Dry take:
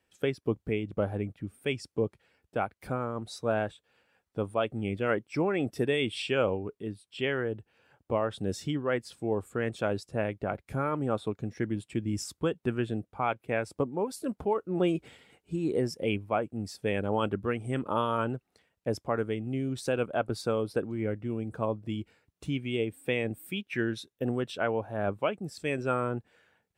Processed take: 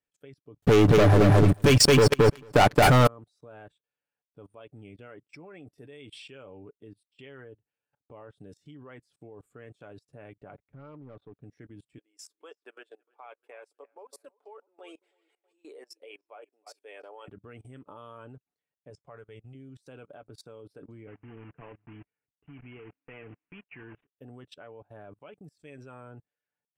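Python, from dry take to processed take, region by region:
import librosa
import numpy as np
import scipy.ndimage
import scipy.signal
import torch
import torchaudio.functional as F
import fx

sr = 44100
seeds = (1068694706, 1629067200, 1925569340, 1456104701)

y = fx.chain(x, sr, fx.leveller(passes=5),
    fx.echo_feedback(ms=222, feedback_pct=18, wet_db=-5.0),
    fx.env_flatten(amount_pct=70), at=(0.62, 3.07))
y = fx.chain(y, sr, fx.clip_hard(threshold_db=-26.5),
    fx.spacing_loss(db_at_10k=36), at=(10.55, 11.43))
y = fx.chain(y, sr, fx.cheby2_highpass(hz=170.0, order=4, stop_db=50),
    fx.echo_wet_lowpass(ms=320, feedback_pct=32, hz=2700.0, wet_db=-16.0), at=(11.98, 17.28))
y = fx.chain(y, sr, fx.cheby1_lowpass(hz=9200.0, order=6),
    fx.peak_eq(hz=280.0, db=-13.0, octaves=0.64), at=(18.9, 19.55))
y = fx.chain(y, sr, fx.block_float(bits=3),
    fx.steep_lowpass(hz=2900.0, slope=96),
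    fx.notch(hz=570.0, q=10.0), at=(21.07, 24.1))
y = y + 0.43 * np.pad(y, (int(6.9 * sr / 1000.0), 0))[:len(y)]
y = fx.level_steps(y, sr, step_db=20)
y = fx.upward_expand(y, sr, threshold_db=-55.0, expansion=1.5)
y = y * 10.0 ** (4.0 / 20.0)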